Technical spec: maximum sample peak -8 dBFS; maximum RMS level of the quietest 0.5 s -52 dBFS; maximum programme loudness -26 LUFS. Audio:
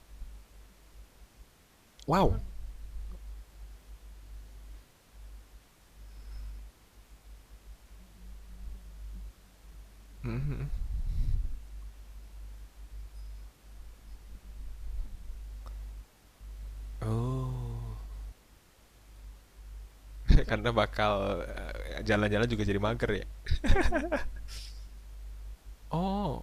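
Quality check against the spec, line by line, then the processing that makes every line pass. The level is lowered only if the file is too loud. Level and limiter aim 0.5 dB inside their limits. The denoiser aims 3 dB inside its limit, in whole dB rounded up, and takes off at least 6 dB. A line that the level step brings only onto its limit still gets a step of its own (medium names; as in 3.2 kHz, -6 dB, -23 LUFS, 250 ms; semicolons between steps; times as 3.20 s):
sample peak -10.5 dBFS: pass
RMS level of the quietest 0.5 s -61 dBFS: pass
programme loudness -33.0 LUFS: pass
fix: none needed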